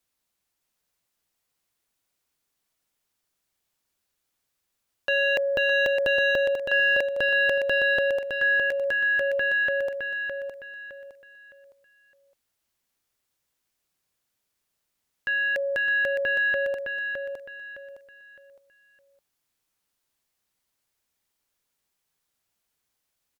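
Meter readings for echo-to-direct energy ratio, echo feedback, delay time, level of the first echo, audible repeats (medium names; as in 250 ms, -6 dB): -5.5 dB, 31%, 612 ms, -6.0 dB, 3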